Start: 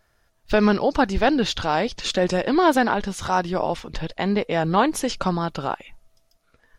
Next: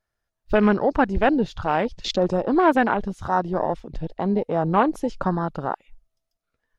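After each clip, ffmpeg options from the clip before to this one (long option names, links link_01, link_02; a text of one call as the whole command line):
ffmpeg -i in.wav -af "afwtdn=0.0447" out.wav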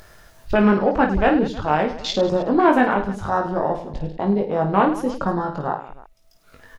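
ffmpeg -i in.wav -filter_complex "[0:a]acompressor=mode=upward:threshold=-25dB:ratio=2.5,asplit=2[link_01][link_02];[link_02]aecho=0:1:20|52|103.2|185.1|316.2:0.631|0.398|0.251|0.158|0.1[link_03];[link_01][link_03]amix=inputs=2:normalize=0" out.wav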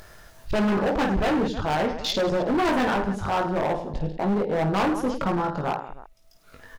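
ffmpeg -i in.wav -af "asoftclip=type=hard:threshold=-20dB" out.wav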